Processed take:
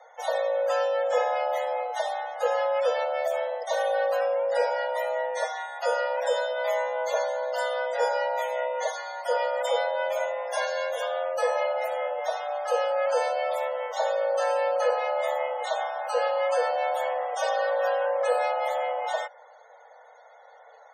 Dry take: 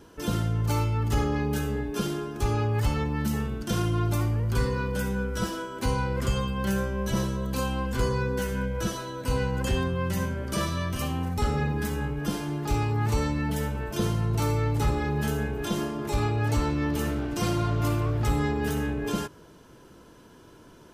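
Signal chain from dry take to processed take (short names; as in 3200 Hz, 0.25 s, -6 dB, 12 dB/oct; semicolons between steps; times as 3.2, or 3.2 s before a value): loudest bins only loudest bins 64; frequency shift +440 Hz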